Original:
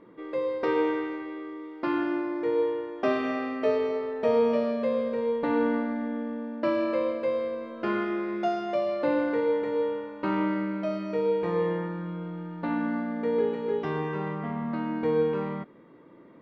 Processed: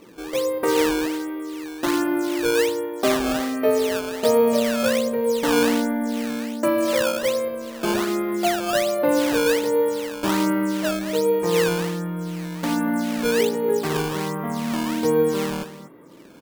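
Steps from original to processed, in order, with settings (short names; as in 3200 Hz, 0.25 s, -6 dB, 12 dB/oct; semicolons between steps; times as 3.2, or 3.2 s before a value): echo 0.242 s -12.5 dB; decimation with a swept rate 13×, swing 160% 1.3 Hz; gain +5.5 dB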